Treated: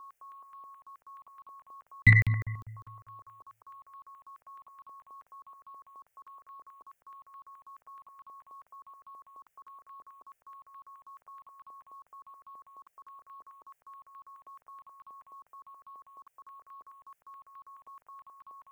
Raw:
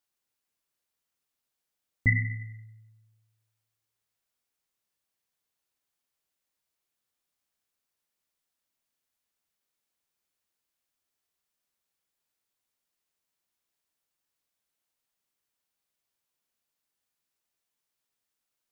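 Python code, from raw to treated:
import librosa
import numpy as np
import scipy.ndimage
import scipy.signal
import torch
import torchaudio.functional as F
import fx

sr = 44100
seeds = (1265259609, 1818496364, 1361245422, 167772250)

p1 = 10.0 ** (-24.5 / 20.0) * np.tanh(x / 10.0 ** (-24.5 / 20.0))
p2 = x + (p1 * librosa.db_to_amplitude(-6.5))
p3 = p2 + 10.0 ** (-51.0 / 20.0) * np.sin(2.0 * np.pi * 1100.0 * np.arange(len(p2)) / sr)
p4 = fx.buffer_crackle(p3, sr, first_s=0.82, period_s=0.2, block=2048, kind='zero')
p5 = fx.phaser_held(p4, sr, hz=9.4, low_hz=570.0, high_hz=1800.0)
y = p5 * librosa.db_to_amplitude(5.5)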